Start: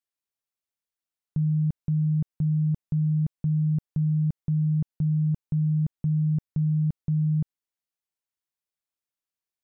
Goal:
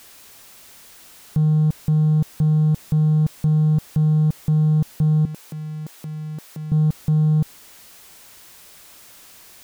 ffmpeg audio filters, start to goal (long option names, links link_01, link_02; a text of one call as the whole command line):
ffmpeg -i in.wav -filter_complex "[0:a]aeval=exprs='val(0)+0.5*0.00531*sgn(val(0))':channel_layout=same,asettb=1/sr,asplit=3[link_01][link_02][link_03];[link_01]atrim=end=5.254[link_04];[link_02]atrim=start=5.25:end=6.72,asetpts=PTS-STARTPTS,afade=type=in:duration=0.004:curve=qsin,afade=type=out:start_time=1.466:duration=0.004:curve=qsin,highpass=370[link_05];[link_03]atrim=start=6.716[link_06];[link_04][link_05]acrossfade=duration=0.004:curve1=hsin:curve2=qsin[link_07];[link_07][link_06]acrossfade=duration=0.004:curve1=qsin:curve2=hsin,asplit=2[link_08][link_09];[link_09]asoftclip=type=hard:threshold=-29.5dB,volume=-7dB[link_10];[link_08][link_10]amix=inputs=2:normalize=0,volume=5dB" out.wav